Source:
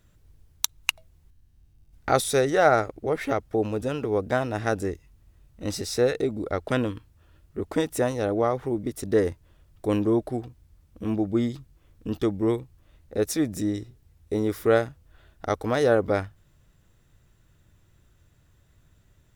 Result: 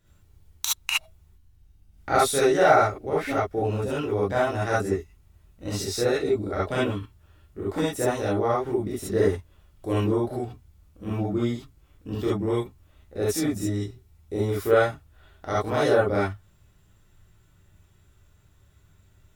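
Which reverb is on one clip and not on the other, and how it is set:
reverb whose tail is shaped and stops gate 90 ms rising, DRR −8 dB
level −6.5 dB

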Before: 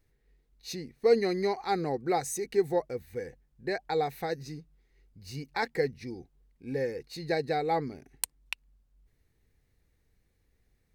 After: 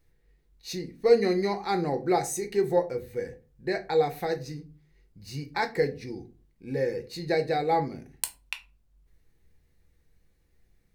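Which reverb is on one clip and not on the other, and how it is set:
rectangular room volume 140 cubic metres, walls furnished, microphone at 0.78 metres
level +1.5 dB

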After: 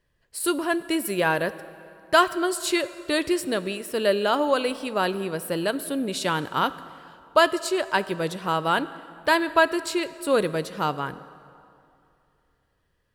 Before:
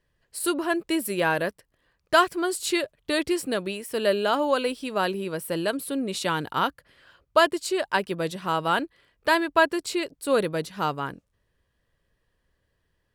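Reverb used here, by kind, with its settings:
dense smooth reverb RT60 2.7 s, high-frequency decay 0.7×, DRR 14.5 dB
level +1 dB

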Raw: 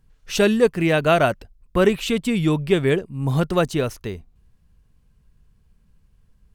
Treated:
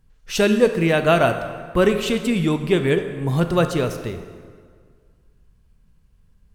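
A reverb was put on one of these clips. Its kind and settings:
dense smooth reverb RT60 1.9 s, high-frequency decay 0.7×, DRR 7.5 dB

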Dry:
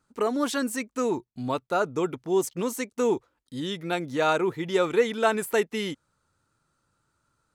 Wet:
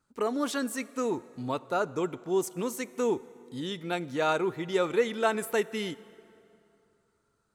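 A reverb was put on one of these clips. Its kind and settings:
dense smooth reverb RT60 2.9 s, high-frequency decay 0.7×, pre-delay 0 ms, DRR 18 dB
level −3.5 dB

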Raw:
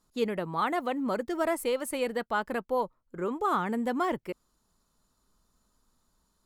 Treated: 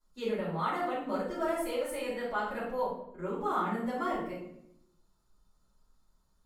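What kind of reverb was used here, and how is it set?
rectangular room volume 170 cubic metres, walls mixed, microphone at 5.2 metres
level −18.5 dB

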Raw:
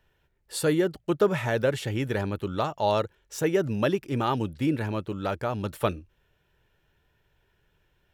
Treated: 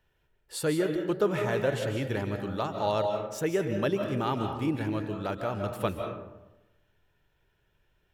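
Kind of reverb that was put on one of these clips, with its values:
comb and all-pass reverb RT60 0.99 s, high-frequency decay 0.45×, pre-delay 115 ms, DRR 4.5 dB
level −4 dB

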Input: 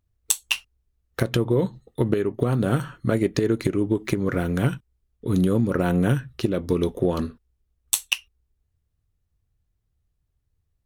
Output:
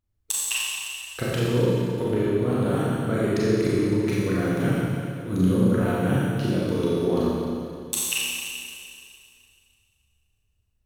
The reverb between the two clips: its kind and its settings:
four-comb reverb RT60 2.4 s, combs from 29 ms, DRR −7.5 dB
level −7.5 dB

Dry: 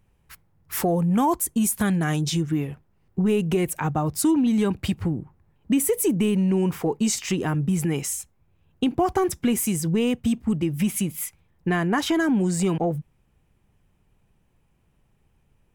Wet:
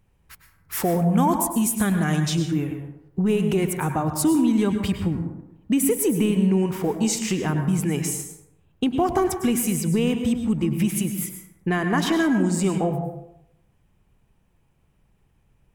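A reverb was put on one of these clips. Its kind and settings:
dense smooth reverb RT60 0.81 s, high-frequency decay 0.5×, pre-delay 90 ms, DRR 6 dB

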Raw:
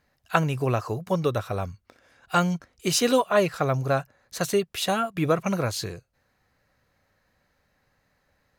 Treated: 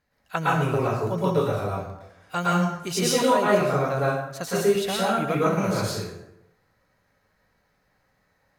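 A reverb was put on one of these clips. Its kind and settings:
dense smooth reverb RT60 0.84 s, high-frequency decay 0.65×, pre-delay 100 ms, DRR −7.5 dB
level −6.5 dB

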